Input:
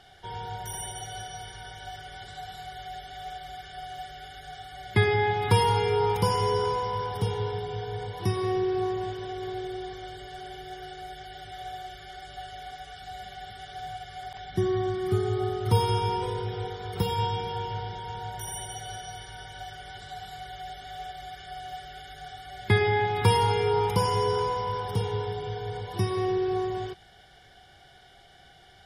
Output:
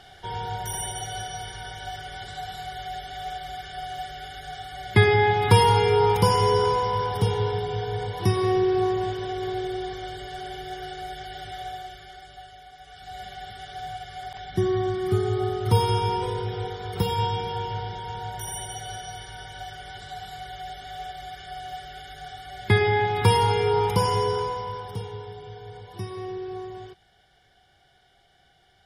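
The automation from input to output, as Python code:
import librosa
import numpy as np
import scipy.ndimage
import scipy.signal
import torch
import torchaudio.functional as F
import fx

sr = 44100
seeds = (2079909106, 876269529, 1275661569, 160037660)

y = fx.gain(x, sr, db=fx.line((11.49, 5.0), (12.71, -7.0), (13.2, 2.5), (24.13, 2.5), (25.18, -7.0)))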